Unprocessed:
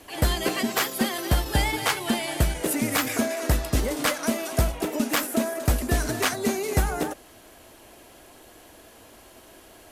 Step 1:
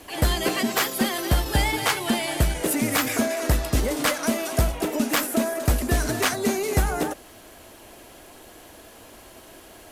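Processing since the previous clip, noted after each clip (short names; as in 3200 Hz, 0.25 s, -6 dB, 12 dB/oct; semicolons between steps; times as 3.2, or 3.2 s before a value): added noise pink -65 dBFS; in parallel at -7 dB: soft clip -27 dBFS, distortion -6 dB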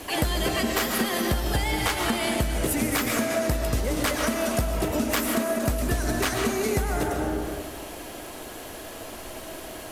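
reverb RT60 1.5 s, pre-delay 85 ms, DRR 4.5 dB; compressor 6:1, threshold -29 dBFS, peak gain reduction 13.5 dB; gain +6.5 dB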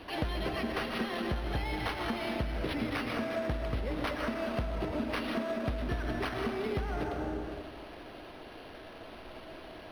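decimation joined by straight lines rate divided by 6×; gain -8 dB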